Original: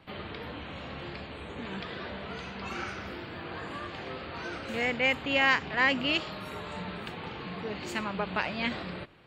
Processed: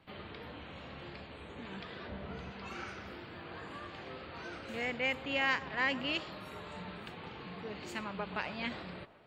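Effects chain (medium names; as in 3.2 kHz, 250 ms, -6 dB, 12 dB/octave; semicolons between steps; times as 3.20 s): 2.07–2.51 s: tilt EQ -2 dB/octave; on a send: feedback echo behind a band-pass 128 ms, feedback 63%, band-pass 680 Hz, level -14 dB; on the sum: trim -7 dB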